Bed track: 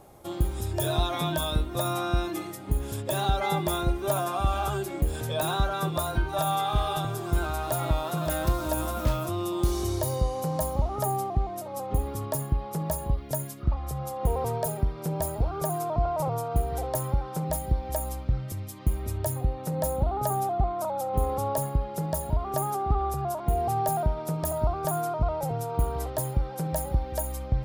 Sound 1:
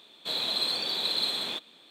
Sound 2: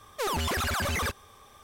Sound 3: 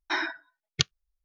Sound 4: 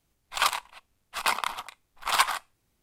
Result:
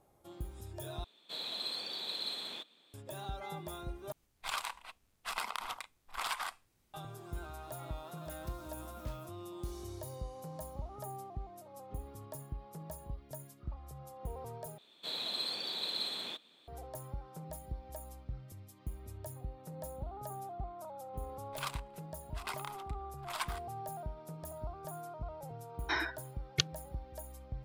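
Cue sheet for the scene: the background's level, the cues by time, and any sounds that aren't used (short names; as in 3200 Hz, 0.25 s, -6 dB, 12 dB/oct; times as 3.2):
bed track -16.5 dB
1.04 replace with 1 -10.5 dB + low shelf 93 Hz -7 dB
4.12 replace with 4 -1.5 dB + compressor 4:1, threshold -33 dBFS
14.78 replace with 1 -8.5 dB
21.21 add 4 -16 dB
25.79 add 3 -5.5 dB
not used: 2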